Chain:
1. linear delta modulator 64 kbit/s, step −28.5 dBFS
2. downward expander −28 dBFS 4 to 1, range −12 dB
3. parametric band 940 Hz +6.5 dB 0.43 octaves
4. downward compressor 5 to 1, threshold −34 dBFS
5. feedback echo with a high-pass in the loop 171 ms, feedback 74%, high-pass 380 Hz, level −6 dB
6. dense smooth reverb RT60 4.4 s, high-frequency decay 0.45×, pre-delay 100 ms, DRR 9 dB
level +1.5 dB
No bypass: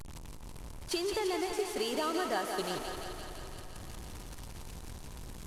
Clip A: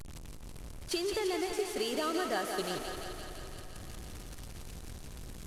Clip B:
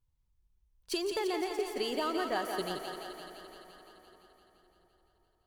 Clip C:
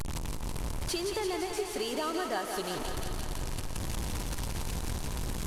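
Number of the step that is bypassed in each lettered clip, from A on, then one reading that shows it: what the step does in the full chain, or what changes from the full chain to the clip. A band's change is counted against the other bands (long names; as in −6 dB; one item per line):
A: 3, 1 kHz band −2.0 dB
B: 1, 125 Hz band −10.0 dB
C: 2, change in momentary loudness spread −10 LU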